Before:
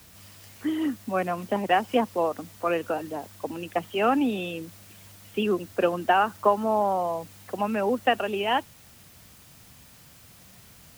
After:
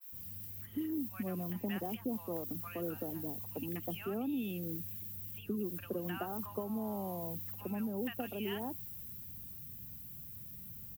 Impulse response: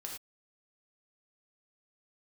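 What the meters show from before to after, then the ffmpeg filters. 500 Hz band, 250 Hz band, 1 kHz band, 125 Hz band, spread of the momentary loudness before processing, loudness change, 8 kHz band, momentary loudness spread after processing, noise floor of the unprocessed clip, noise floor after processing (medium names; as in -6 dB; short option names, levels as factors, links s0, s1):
-16.0 dB, -8.5 dB, -21.5 dB, -3.5 dB, 12 LU, -13.5 dB, -8.0 dB, 8 LU, -52 dBFS, -49 dBFS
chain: -filter_complex "[0:a]firequalizer=gain_entry='entry(150,0);entry(620,-16);entry(8400,-13);entry(14000,7)':delay=0.05:min_phase=1,acompressor=threshold=0.0158:ratio=4,acrossover=split=1000[s0][s1];[s0]adelay=120[s2];[s2][s1]amix=inputs=2:normalize=0,adynamicequalizer=threshold=0.00141:dfrequency=1600:dqfactor=0.7:tfrequency=1600:tqfactor=0.7:attack=5:release=100:ratio=0.375:range=1.5:mode=boostabove:tftype=highshelf,volume=1.12"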